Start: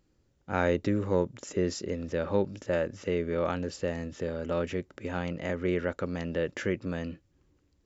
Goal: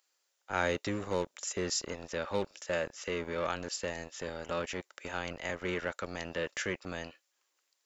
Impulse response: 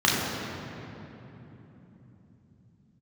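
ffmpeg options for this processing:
-filter_complex "[0:a]highshelf=f=3800:g=11,acrossover=split=650[s0][s1];[s0]acrusher=bits=4:mix=0:aa=0.5[s2];[s1]acontrast=86[s3];[s2][s3]amix=inputs=2:normalize=0,volume=0.376"

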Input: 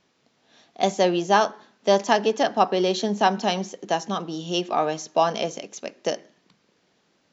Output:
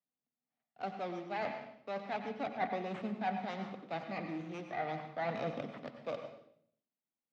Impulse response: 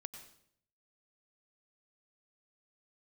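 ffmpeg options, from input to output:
-filter_complex "[0:a]agate=range=0.0316:threshold=0.00316:ratio=16:detection=peak,areverse,acompressor=threshold=0.0251:ratio=5,areverse,aphaser=in_gain=1:out_gain=1:delay=3.4:decay=0.29:speed=0.37:type=sinusoidal,acrossover=split=180|780[s0][s1][s2];[s2]aeval=exprs='abs(val(0))':c=same[s3];[s0][s1][s3]amix=inputs=3:normalize=0,highpass=f=120:w=0.5412,highpass=f=120:w=1.3066,equalizer=f=130:t=q:w=4:g=4,equalizer=f=250:t=q:w=4:g=5,equalizer=f=370:t=q:w=4:g=-9,equalizer=f=770:t=q:w=4:g=8,equalizer=f=1200:t=q:w=4:g=6,equalizer=f=2000:t=q:w=4:g=6,lowpass=f=4000:w=0.5412,lowpass=f=4000:w=1.3066[s4];[1:a]atrim=start_sample=2205[s5];[s4][s5]afir=irnorm=-1:irlink=0"

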